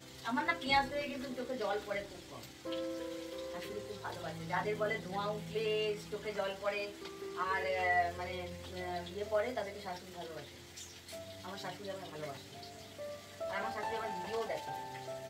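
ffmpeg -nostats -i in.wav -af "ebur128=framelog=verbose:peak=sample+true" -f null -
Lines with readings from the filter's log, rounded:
Integrated loudness:
  I:         -38.4 LUFS
  Threshold: -48.6 LUFS
Loudness range:
  LRA:         8.5 LU
  Threshold: -59.0 LUFS
  LRA low:   -44.7 LUFS
  LRA high:  -36.2 LUFS
Sample peak:
  Peak:      -16.9 dBFS
True peak:
  Peak:      -16.9 dBFS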